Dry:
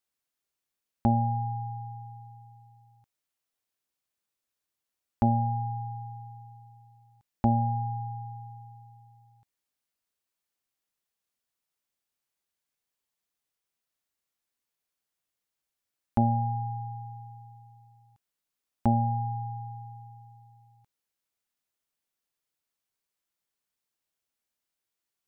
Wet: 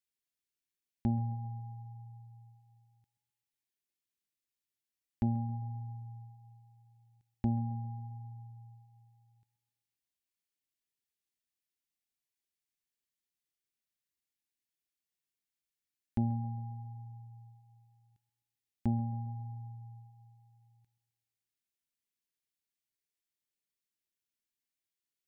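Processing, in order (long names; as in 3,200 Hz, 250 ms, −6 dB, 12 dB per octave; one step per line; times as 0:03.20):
flat-topped bell 840 Hz −11.5 dB
on a send: tape delay 132 ms, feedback 65%, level −15.5 dB, low-pass 1,300 Hz
on the sum: level −6 dB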